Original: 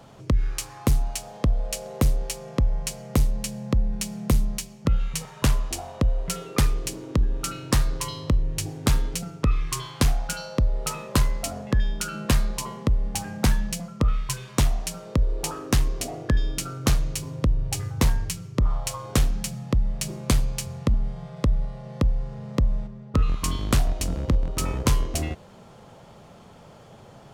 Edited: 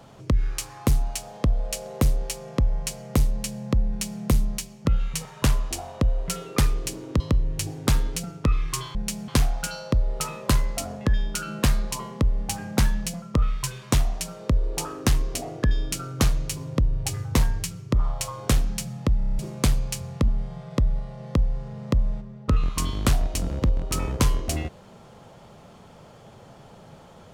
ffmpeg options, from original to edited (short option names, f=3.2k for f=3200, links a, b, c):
-filter_complex "[0:a]asplit=11[a][b][c][d][e][f][g][h][i][j][k];[a]atrim=end=7.202[l];[b]atrim=start=8.188:end=9.942[m];[c]atrim=start=3.878:end=4.212[n];[d]atrim=start=9.938:end=19.872[o];[e]atrim=start=19.838:end=19.872[p];[f]atrim=start=19.838:end=19.872[q];[g]atrim=start=19.838:end=19.872[r];[h]atrim=start=19.838:end=19.872[s];[i]atrim=start=19.838:end=19.872[t];[j]atrim=start=19.838:end=19.872[u];[k]atrim=start=20.048[v];[l][m]acrossfade=d=0.004:c1=hsin:c2=hsin[w];[w][n]acrossfade=d=0.004:c1=hsin:c2=hsin[x];[x][o]acrossfade=d=0.004:c1=hsin:c2=hsin[y];[y][p]acrossfade=d=0.004:c1=hsin:c2=hsin[z];[z][q]acrossfade=d=0.004:c1=hsin:c2=hsin[aa];[aa][r]acrossfade=d=0.004:c1=hsin:c2=hsin[ab];[ab][s]acrossfade=d=0.004:c1=hsin:c2=hsin[ac];[ac][t]acrossfade=d=0.004:c1=hsin:c2=hsin[ad];[ad][u]acrossfade=d=0.004:c1=hsin:c2=hsin[ae];[ae][v]acrossfade=d=0.004:c1=hsin:c2=hsin"